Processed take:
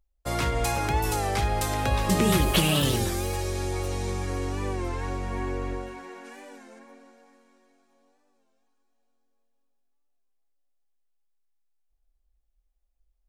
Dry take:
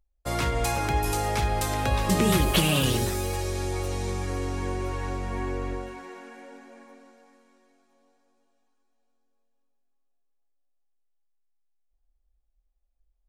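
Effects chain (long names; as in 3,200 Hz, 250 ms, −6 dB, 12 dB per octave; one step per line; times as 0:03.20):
0:06.24–0:06.78: high-shelf EQ 3,400 Hz → 5,900 Hz +9.5 dB
wow of a warped record 33 1/3 rpm, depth 100 cents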